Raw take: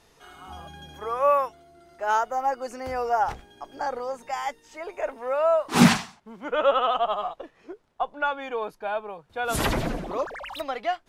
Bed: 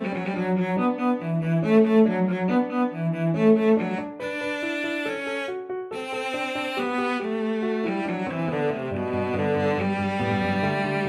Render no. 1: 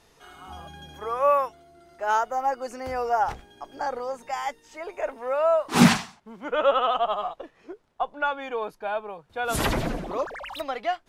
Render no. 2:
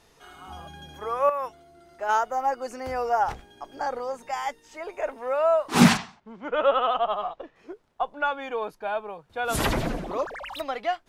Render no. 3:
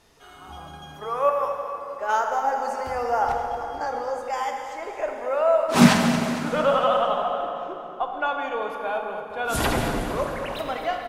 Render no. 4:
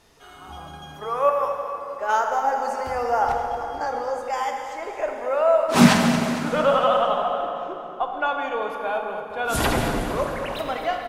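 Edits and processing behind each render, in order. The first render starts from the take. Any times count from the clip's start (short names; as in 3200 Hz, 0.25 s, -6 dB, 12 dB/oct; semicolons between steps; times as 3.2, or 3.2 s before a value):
nothing audible
1.29–2.09 compressor 12:1, threshold -24 dBFS; 5.97–7.56 air absorption 100 m
feedback echo 0.228 s, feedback 52%, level -12 dB; plate-style reverb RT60 3.1 s, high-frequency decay 0.65×, DRR 2.5 dB
gain +1.5 dB; limiter -2 dBFS, peak gain reduction 1.5 dB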